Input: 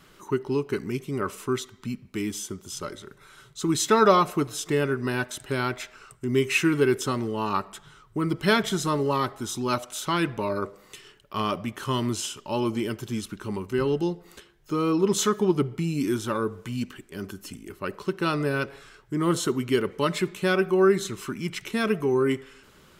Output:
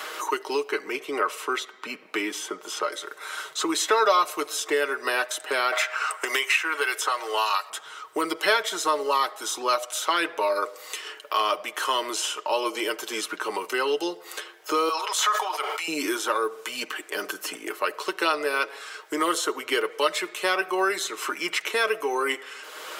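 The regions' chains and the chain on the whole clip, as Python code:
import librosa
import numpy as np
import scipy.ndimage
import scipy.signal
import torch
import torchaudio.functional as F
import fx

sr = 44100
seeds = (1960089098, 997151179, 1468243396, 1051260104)

y = fx.chain(x, sr, fx.highpass(hz=160.0, slope=12),
    fx.bass_treble(bass_db=3, treble_db=-11), at=(0.69, 2.92))
y = fx.chain(y, sr, fx.highpass(hz=760.0, slope=12),
    fx.band_squash(depth_pct=100), at=(5.72, 7.7))
y = fx.chain(y, sr, fx.highpass(hz=690.0, slope=24),
    fx.sustainer(db_per_s=48.0), at=(14.89, 15.88))
y = scipy.signal.sosfilt(scipy.signal.butter(4, 470.0, 'highpass', fs=sr, output='sos'), y)
y = y + 0.47 * np.pad(y, (int(6.4 * sr / 1000.0), 0))[:len(y)]
y = fx.band_squash(y, sr, depth_pct=70)
y = y * librosa.db_to_amplitude(4.5)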